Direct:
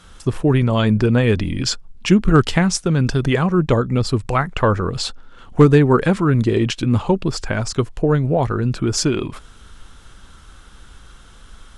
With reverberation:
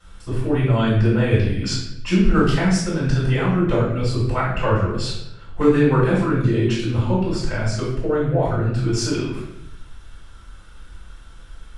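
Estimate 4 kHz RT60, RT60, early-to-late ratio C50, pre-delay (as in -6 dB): 0.65 s, 0.80 s, 1.5 dB, 3 ms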